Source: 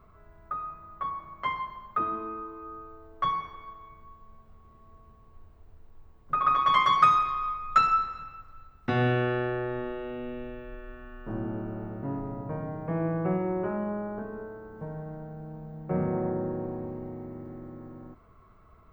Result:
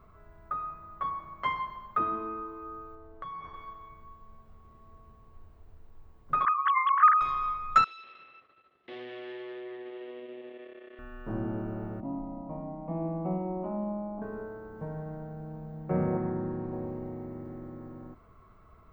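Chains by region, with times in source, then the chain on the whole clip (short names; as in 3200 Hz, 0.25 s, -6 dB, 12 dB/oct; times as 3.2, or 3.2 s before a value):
2.95–3.54 high shelf 2900 Hz -9.5 dB + compressor 10:1, threshold -37 dBFS
6.45–7.21 sine-wave speech + LPF 1600 Hz
7.84–10.99 compressor 2:1, threshold -40 dBFS + tube stage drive 40 dB, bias 0.7 + speaker cabinet 350–4200 Hz, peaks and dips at 370 Hz +8 dB, 540 Hz +4 dB, 890 Hz -7 dB, 1400 Hz -10 dB, 2000 Hz +6 dB, 3300 Hz +8 dB
12–14.22 LPF 1300 Hz 6 dB/oct + fixed phaser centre 430 Hz, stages 6
16.17–16.73 LPF 6100 Hz + bell 550 Hz -8.5 dB 0.78 oct
whole clip: dry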